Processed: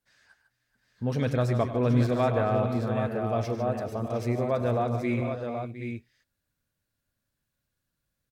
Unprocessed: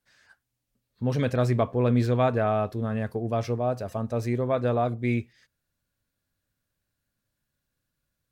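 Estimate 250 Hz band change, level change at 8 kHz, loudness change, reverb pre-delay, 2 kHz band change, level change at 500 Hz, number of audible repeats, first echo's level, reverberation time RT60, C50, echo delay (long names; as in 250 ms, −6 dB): −0.5 dB, can't be measured, −1.5 dB, no reverb audible, −1.0 dB, −1.0 dB, 6, −13.5 dB, no reverb audible, no reverb audible, 99 ms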